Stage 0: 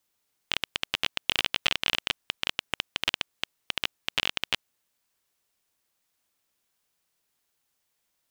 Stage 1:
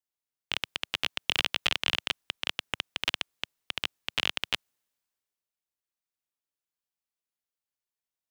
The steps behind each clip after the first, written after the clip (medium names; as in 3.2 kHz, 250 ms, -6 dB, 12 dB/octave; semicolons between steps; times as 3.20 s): three bands expanded up and down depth 40%; trim -1.5 dB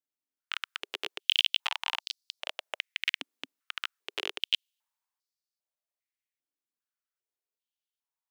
step-sequenced high-pass 2.5 Hz 270–4600 Hz; trim -6.5 dB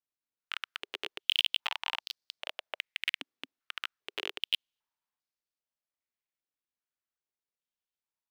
median filter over 5 samples; trim -2 dB